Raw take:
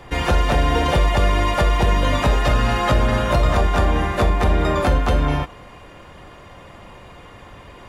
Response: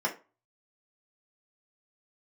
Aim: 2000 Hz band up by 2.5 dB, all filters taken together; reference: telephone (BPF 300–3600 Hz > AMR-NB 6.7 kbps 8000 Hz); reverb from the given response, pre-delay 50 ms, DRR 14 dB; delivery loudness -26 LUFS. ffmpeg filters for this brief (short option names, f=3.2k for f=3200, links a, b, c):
-filter_complex "[0:a]equalizer=f=2k:t=o:g=3.5,asplit=2[a][b];[1:a]atrim=start_sample=2205,adelay=50[c];[b][c]afir=irnorm=-1:irlink=0,volume=-22.5dB[d];[a][d]amix=inputs=2:normalize=0,highpass=300,lowpass=3.6k,volume=-2dB" -ar 8000 -c:a libopencore_amrnb -b:a 6700